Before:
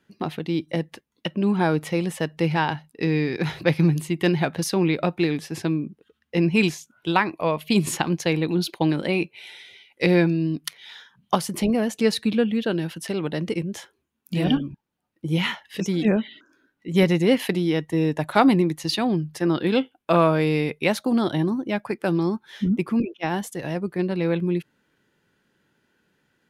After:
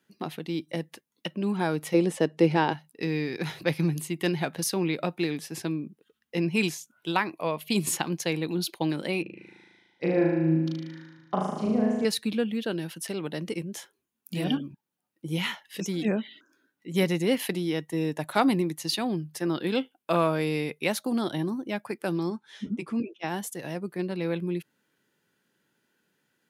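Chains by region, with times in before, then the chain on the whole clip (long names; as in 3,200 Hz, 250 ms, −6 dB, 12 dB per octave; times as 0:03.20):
0:01.94–0:02.73: low-pass filter 9,000 Hz + parametric band 380 Hz +10.5 dB 1.9 octaves
0:09.22–0:12.05: head-to-tape spacing loss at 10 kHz 28 dB + phaser swept by the level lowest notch 400 Hz, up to 4,100 Hz, full sweep at −24 dBFS + flutter between parallel walls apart 6.4 metres, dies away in 1.2 s
0:22.30–0:23.24: low-pass filter 9,300 Hz 24 dB per octave + notch comb filter 180 Hz
whole clip: high-pass filter 130 Hz; high-shelf EQ 6,300 Hz +10.5 dB; level −6 dB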